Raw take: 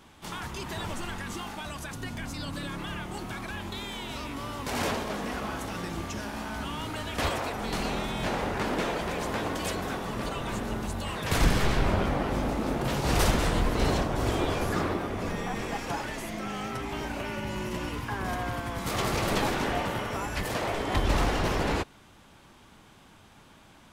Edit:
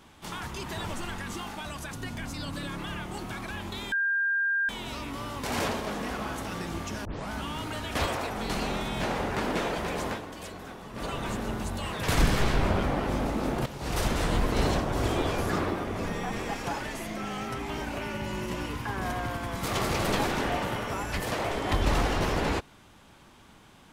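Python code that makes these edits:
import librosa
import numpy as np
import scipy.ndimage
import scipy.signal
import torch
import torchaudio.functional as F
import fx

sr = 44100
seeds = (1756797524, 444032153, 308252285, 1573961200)

y = fx.edit(x, sr, fx.insert_tone(at_s=3.92, length_s=0.77, hz=1600.0, db=-23.5),
    fx.tape_start(start_s=6.28, length_s=0.25),
    fx.fade_down_up(start_s=9.31, length_s=0.99, db=-9.5, fade_s=0.14),
    fx.fade_in_from(start_s=12.89, length_s=0.7, floor_db=-14.0), tone=tone)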